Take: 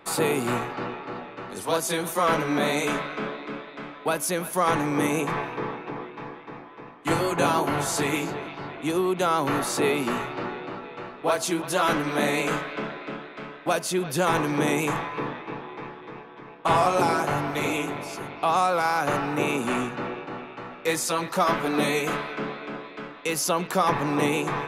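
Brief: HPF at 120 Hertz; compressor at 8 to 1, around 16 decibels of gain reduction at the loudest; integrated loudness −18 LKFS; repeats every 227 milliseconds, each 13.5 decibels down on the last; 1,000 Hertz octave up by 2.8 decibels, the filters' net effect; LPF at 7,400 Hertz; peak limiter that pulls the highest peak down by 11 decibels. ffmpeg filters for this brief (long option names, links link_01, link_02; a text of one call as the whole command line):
ffmpeg -i in.wav -af "highpass=120,lowpass=7400,equalizer=frequency=1000:width_type=o:gain=3.5,acompressor=threshold=-32dB:ratio=8,alimiter=level_in=5.5dB:limit=-24dB:level=0:latency=1,volume=-5.5dB,aecho=1:1:227|454:0.211|0.0444,volume=20.5dB" out.wav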